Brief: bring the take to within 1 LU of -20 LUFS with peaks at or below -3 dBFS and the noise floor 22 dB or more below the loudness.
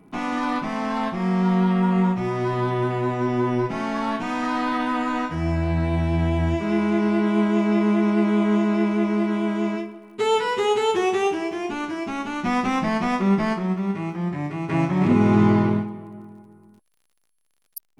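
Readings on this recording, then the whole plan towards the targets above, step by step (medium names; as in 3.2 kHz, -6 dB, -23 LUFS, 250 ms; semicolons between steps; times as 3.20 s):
tick rate 46 per s; loudness -22.5 LUFS; peak level -6.0 dBFS; loudness target -20.0 LUFS
-> de-click; trim +2.5 dB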